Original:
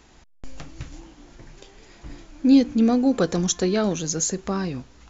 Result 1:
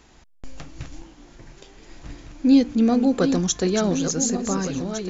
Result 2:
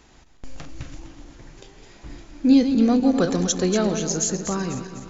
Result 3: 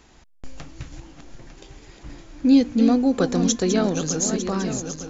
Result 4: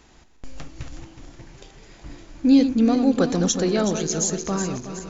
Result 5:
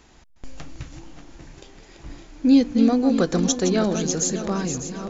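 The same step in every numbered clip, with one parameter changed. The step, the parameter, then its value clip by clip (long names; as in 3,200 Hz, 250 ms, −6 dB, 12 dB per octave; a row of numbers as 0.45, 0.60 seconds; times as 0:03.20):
feedback delay that plays each chunk backwards, delay time: 729, 125, 451, 185, 299 milliseconds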